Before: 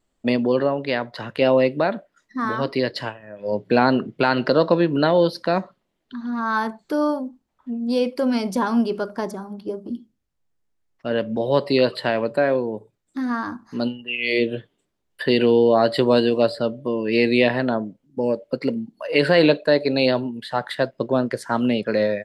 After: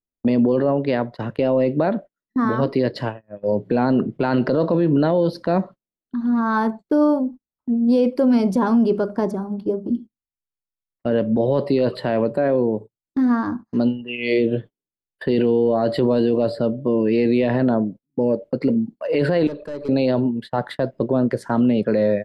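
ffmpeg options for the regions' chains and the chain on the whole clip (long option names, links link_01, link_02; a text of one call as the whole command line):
ffmpeg -i in.wav -filter_complex "[0:a]asettb=1/sr,asplit=3[link_01][link_02][link_03];[link_01]atrim=end=19.474[link_04];[link_02]atrim=start=19.47:end=19.89,asetpts=PTS-STARTPTS,afade=type=in:duration=0.004:curve=qsin,afade=type=out:start_time=0.416:duration=0.004:curve=qsin,acompressor=threshold=-28dB:ratio=3:attack=3.2:release=140:knee=1:detection=peak,aeval=exprs='(tanh(31.6*val(0)+0.2)-tanh(0.2))/31.6':channel_layout=same,asuperstop=centerf=690:order=4:qfactor=5[link_05];[link_03]atrim=start=19.886[link_06];[link_04][link_05]acrossfade=duration=0.004:curve1=hsin:curve2=qsin[link_07];[link_07][link_06]acrossfade=duration=0.004:curve1=qsin:curve2=hsin,tiltshelf=frequency=940:gain=7,agate=range=-29dB:threshold=-33dB:ratio=16:detection=peak,alimiter=limit=-11.5dB:level=0:latency=1:release=17,volume=1.5dB" out.wav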